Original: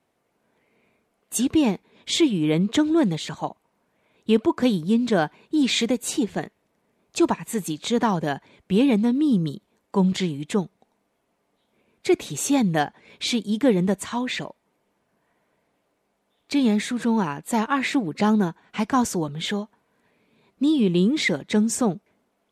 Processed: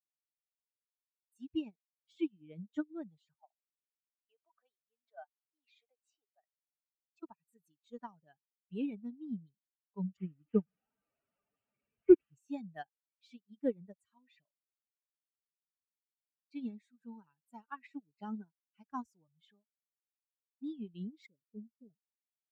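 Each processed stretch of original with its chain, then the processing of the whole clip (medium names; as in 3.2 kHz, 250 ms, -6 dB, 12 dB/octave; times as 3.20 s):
3.40–7.23 s: compression 2:1, threshold -26 dBFS + resonant high-pass 680 Hz, resonance Q 2.1 + distance through air 71 m
10.17–12.35 s: one-bit delta coder 16 kbps, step -30 dBFS + high-pass 230 Hz 6 dB/octave + bass shelf 420 Hz +11 dB
21.26–21.90 s: inverse Chebyshev low-pass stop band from 1.7 kHz, stop band 60 dB + bass shelf 80 Hz -11.5 dB
whole clip: expander on every frequency bin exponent 2; de-esser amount 75%; upward expansion 2.5:1, over -33 dBFS; trim -2.5 dB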